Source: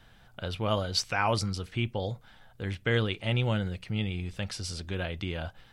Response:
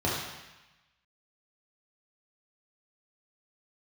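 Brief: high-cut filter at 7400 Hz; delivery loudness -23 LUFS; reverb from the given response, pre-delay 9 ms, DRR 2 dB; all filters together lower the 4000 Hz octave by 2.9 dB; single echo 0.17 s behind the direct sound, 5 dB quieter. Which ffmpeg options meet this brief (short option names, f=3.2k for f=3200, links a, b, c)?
-filter_complex "[0:a]lowpass=7.4k,equalizer=f=4k:t=o:g=-3.5,aecho=1:1:170:0.562,asplit=2[a][b];[1:a]atrim=start_sample=2205,adelay=9[c];[b][c]afir=irnorm=-1:irlink=0,volume=-13.5dB[d];[a][d]amix=inputs=2:normalize=0,volume=3dB"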